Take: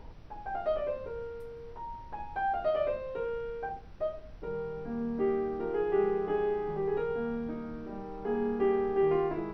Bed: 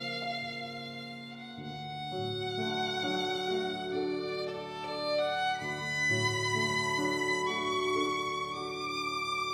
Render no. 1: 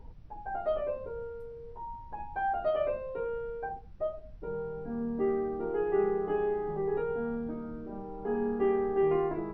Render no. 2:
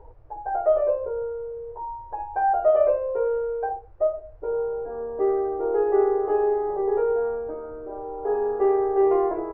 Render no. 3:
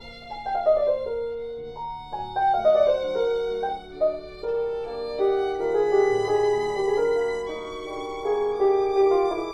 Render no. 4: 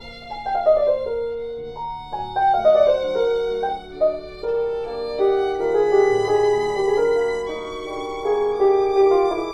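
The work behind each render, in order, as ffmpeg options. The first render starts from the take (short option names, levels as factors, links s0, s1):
-af "afftdn=nr=11:nf=-46"
-af "firequalizer=gain_entry='entry(120,0);entry(190,-29);entry(310,3);entry(490,12);entry(3400,-12)':delay=0.05:min_phase=1"
-filter_complex "[1:a]volume=0.473[s0];[0:a][s0]amix=inputs=2:normalize=0"
-af "volume=1.58"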